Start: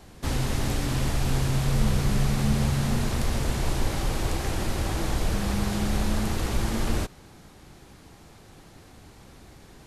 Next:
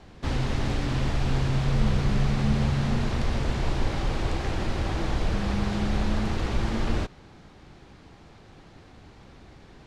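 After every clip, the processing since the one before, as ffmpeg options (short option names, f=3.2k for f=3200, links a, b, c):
-af "lowpass=4.4k"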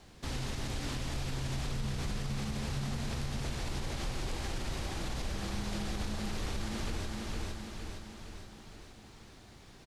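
-af "aemphasis=mode=production:type=75fm,aecho=1:1:461|922|1383|1844|2305|2766|3227:0.501|0.286|0.163|0.0928|0.0529|0.0302|0.0172,alimiter=limit=-20dB:level=0:latency=1:release=92,volume=-7dB"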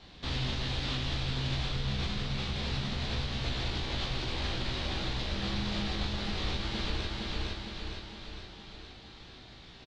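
-filter_complex "[0:a]lowpass=f=3.8k:t=q:w=2.6,asplit=2[a][b];[b]aecho=0:1:16|40:0.668|0.562[c];[a][c]amix=inputs=2:normalize=0"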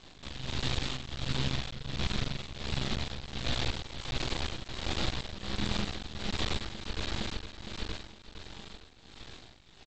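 -af "aresample=16000,aeval=exprs='max(val(0),0)':c=same,aresample=44100,tremolo=f=1.4:d=0.73,volume=6dB"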